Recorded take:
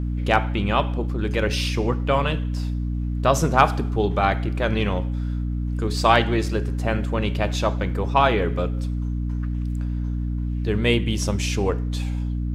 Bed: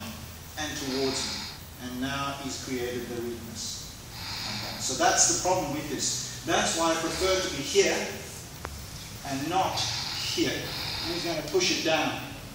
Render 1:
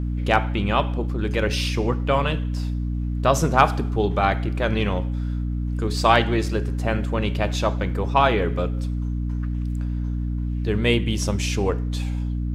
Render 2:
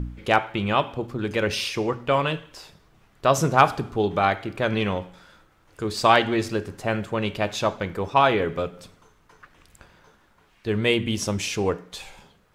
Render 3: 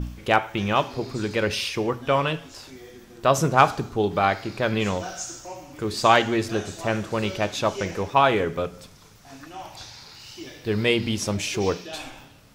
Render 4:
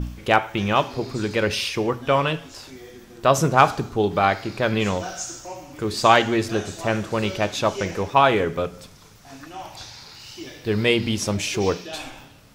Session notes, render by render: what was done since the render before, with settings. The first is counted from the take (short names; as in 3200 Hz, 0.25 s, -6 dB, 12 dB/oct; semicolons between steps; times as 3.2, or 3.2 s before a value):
nothing audible
de-hum 60 Hz, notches 5
add bed -12.5 dB
gain +2 dB; limiter -2 dBFS, peak gain reduction 1 dB